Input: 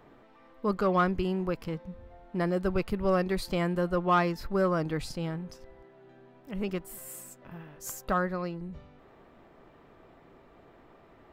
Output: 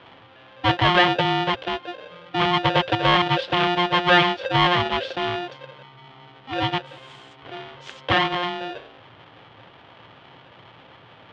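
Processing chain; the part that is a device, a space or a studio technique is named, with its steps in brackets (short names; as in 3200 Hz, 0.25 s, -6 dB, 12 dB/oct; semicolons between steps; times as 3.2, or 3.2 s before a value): ring modulator pedal into a guitar cabinet (polarity switched at an audio rate 530 Hz; speaker cabinet 95–3700 Hz, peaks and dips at 110 Hz +7 dB, 210 Hz -7 dB, 3200 Hz +9 dB); gain +8 dB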